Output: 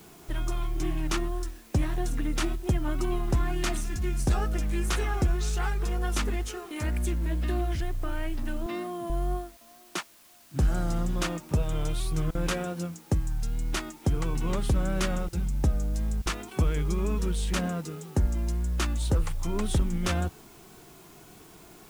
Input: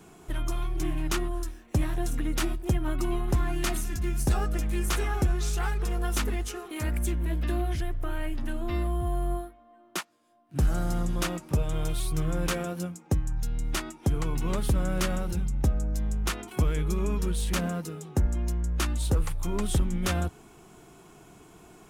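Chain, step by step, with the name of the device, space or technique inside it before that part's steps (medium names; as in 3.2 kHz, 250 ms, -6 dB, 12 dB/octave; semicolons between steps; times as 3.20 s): worn cassette (low-pass 9.2 kHz 12 dB/octave; wow and flutter; level dips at 9.57/12.31/15.29/16.22 s, 38 ms -23 dB; white noise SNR 29 dB); 8.66–9.10 s: high-pass 190 Hz 24 dB/octave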